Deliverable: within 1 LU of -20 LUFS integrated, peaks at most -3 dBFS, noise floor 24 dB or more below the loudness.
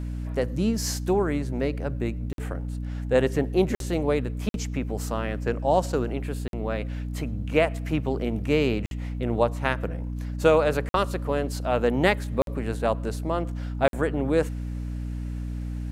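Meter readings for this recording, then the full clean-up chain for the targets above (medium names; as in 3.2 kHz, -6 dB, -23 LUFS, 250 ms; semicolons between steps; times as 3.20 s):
dropouts 8; longest dropout 52 ms; hum 60 Hz; highest harmonic 300 Hz; hum level -29 dBFS; loudness -26.5 LUFS; peak level -4.5 dBFS; loudness target -20.0 LUFS
-> interpolate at 2.33/3.75/4.49/6.48/8.86/10.89/12.42/13.88 s, 52 ms; hum notches 60/120/180/240/300 Hz; trim +6.5 dB; peak limiter -3 dBFS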